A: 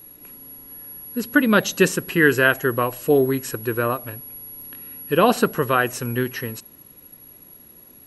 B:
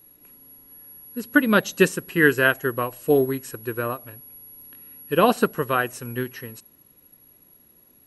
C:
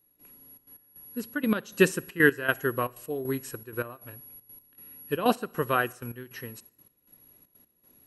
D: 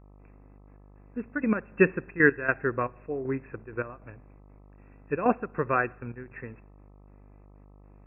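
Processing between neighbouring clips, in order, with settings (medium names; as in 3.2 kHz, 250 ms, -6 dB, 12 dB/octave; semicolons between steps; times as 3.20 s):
dynamic bell 9.5 kHz, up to +5 dB, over -48 dBFS, Q 2.6; upward expansion 1.5:1, over -28 dBFS
trance gate "..xxxx.x" 157 bpm -12 dB; reverberation RT60 0.75 s, pre-delay 45 ms, DRR 24.5 dB; trim -3 dB
mains buzz 50 Hz, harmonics 26, -53 dBFS -6 dB/octave; brick-wall FIR low-pass 2.7 kHz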